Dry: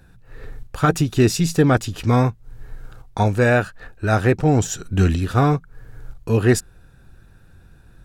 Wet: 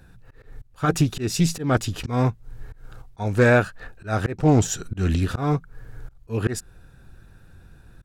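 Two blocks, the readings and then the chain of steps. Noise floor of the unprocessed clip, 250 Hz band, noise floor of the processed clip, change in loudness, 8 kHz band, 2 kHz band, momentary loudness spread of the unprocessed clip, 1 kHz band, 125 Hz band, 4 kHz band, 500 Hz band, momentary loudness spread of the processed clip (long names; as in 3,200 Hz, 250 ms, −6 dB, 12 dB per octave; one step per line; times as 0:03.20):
−49 dBFS, −4.0 dB, −52 dBFS, −4.0 dB, −2.0 dB, −2.5 dB, 8 LU, −5.0 dB, −4.0 dB, −2.5 dB, −4.0 dB, 12 LU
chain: volume swells 224 ms
highs frequency-modulated by the lows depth 0.16 ms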